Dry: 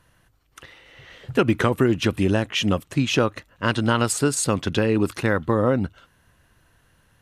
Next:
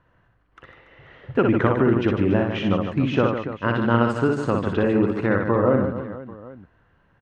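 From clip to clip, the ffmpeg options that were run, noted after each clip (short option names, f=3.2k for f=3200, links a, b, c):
-af "lowpass=1.7k,lowshelf=f=95:g=-5,aecho=1:1:60|150|285|487.5|791.2:0.631|0.398|0.251|0.158|0.1"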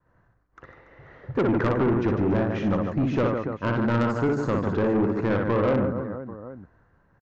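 -af "agate=range=-33dB:threshold=-58dB:ratio=3:detection=peak,equalizer=f=3k:t=o:w=0.75:g=-14,aresample=16000,asoftclip=type=tanh:threshold=-18.5dB,aresample=44100,volume=1dB"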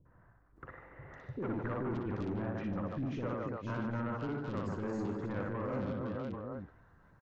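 -filter_complex "[0:a]areverse,acompressor=threshold=-32dB:ratio=12,areverse,acrossover=split=440|2600[a][b][c];[b]adelay=50[d];[c]adelay=560[e];[a][d][e]amix=inputs=3:normalize=0,acompressor=mode=upward:threshold=-57dB:ratio=2.5,volume=-1dB"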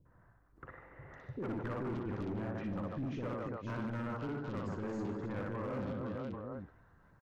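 -af "volume=31.5dB,asoftclip=hard,volume=-31.5dB,volume=-1.5dB"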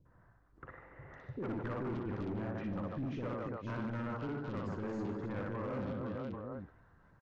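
-af "lowpass=6.2k"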